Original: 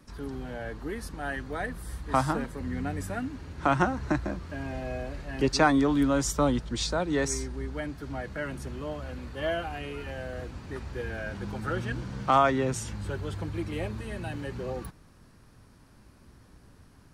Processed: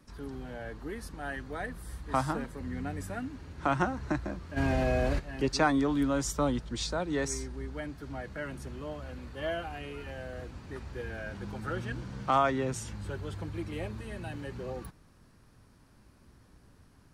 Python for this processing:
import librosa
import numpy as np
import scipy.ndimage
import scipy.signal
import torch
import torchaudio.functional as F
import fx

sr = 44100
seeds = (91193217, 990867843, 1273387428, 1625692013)

y = fx.env_flatten(x, sr, amount_pct=70, at=(4.56, 5.18), fade=0.02)
y = y * 10.0 ** (-4.0 / 20.0)